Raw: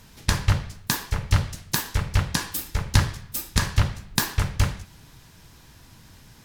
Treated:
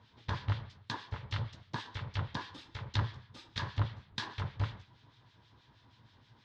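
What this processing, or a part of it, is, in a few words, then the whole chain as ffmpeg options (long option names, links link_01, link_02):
guitar amplifier with harmonic tremolo: -filter_complex "[0:a]acrossover=split=1600[link_01][link_02];[link_01]aeval=exprs='val(0)*(1-0.7/2+0.7/2*cos(2*PI*6.3*n/s))':channel_layout=same[link_03];[link_02]aeval=exprs='val(0)*(1-0.7/2-0.7/2*cos(2*PI*6.3*n/s))':channel_layout=same[link_04];[link_03][link_04]amix=inputs=2:normalize=0,asoftclip=type=tanh:threshold=-13.5dB,highpass=95,equalizer=frequency=110:width_type=q:width=4:gain=8,equalizer=frequency=170:width_type=q:width=4:gain=-7,equalizer=frequency=980:width_type=q:width=4:gain=5,equalizer=frequency=2500:width_type=q:width=4:gain=-3,equalizer=frequency=3500:width_type=q:width=4:gain=5,lowpass=frequency=4300:width=0.5412,lowpass=frequency=4300:width=1.3066,volume=-8.5dB"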